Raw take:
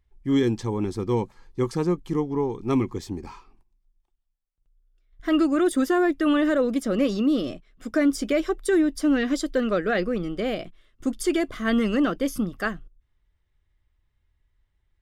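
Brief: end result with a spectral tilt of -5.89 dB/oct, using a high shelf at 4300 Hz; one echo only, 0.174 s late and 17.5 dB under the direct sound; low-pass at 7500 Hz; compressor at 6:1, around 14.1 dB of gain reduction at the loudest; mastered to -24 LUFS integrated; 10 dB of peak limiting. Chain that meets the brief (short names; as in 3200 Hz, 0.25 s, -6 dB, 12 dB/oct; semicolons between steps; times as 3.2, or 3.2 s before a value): LPF 7500 Hz; high shelf 4300 Hz -3 dB; compressor 6:1, threshold -33 dBFS; limiter -32.5 dBFS; echo 0.174 s -17.5 dB; gain +17 dB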